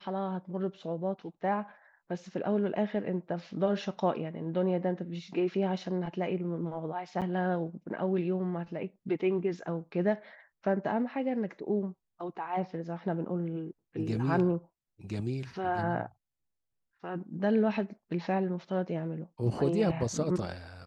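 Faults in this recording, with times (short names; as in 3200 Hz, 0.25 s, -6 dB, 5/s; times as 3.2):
7.21–7.22 gap 7.6 ms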